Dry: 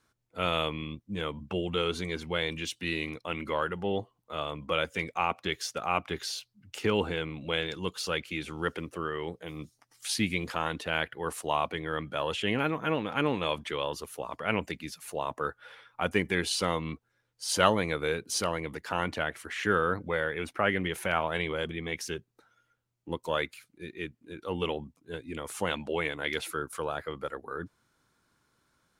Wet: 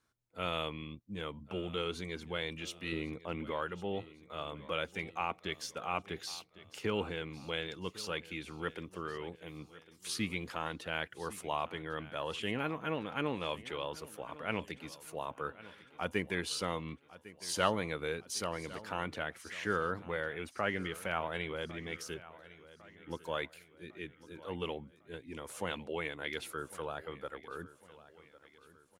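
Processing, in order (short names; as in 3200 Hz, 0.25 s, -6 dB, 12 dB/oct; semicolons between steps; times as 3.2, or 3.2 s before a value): 2.92–3.51 tilt shelf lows +5.5 dB, about 1200 Hz; on a send: feedback echo 1.103 s, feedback 48%, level -18 dB; on the sum: gain -7 dB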